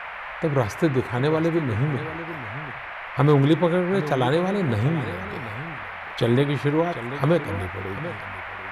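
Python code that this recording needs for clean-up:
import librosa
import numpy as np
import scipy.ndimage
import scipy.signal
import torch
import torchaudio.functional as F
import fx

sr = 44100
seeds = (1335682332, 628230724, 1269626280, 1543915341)

y = fx.noise_reduce(x, sr, print_start_s=2.66, print_end_s=3.16, reduce_db=30.0)
y = fx.fix_echo_inverse(y, sr, delay_ms=740, level_db=-13.5)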